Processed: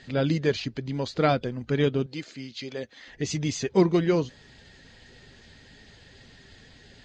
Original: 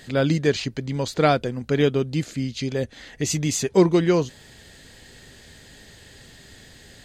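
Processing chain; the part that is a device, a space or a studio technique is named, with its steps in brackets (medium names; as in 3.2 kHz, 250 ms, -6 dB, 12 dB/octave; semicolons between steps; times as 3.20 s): clip after many re-uploads (low-pass 5.9 kHz 24 dB/octave; coarse spectral quantiser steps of 15 dB); 2.06–3.08 s: high-pass 550 Hz 6 dB/octave; trim -3.5 dB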